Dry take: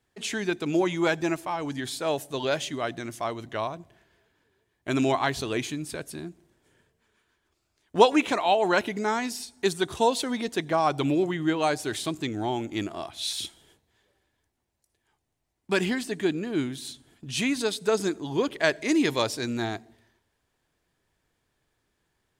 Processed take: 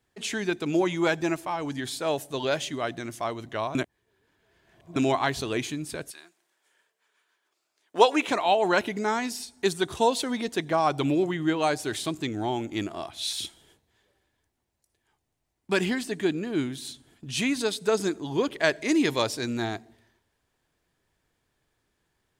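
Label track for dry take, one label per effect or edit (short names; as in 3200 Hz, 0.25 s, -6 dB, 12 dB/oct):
3.750000	4.960000	reverse
6.100000	8.270000	HPF 1200 Hz -> 310 Hz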